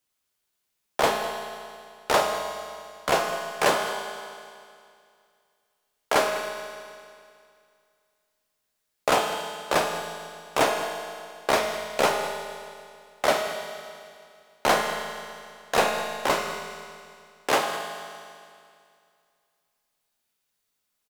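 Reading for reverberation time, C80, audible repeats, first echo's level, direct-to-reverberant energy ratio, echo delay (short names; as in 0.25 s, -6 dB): 2.3 s, 5.5 dB, 1, -15.5 dB, 3.0 dB, 0.203 s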